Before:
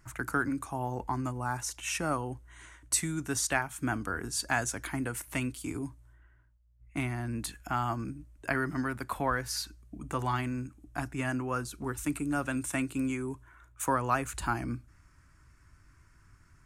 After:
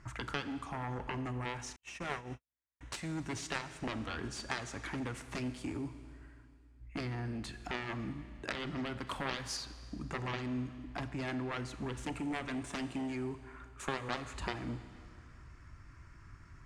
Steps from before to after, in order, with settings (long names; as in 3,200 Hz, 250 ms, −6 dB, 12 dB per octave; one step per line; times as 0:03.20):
running median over 3 samples
harmonic generator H 7 −10 dB, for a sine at −12.5 dBFS
downward compressor 2 to 1, threshold −46 dBFS, peak gain reduction 14 dB
high-frequency loss of the air 84 metres
notch filter 1,500 Hz, Q 24
four-comb reverb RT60 2.3 s, combs from 28 ms, DRR 11 dB
0:01.76–0:02.81: noise gate −43 dBFS, range −56 dB
0:09.07–0:09.57: high-shelf EQ 5,200 Hz +11 dB
level +4 dB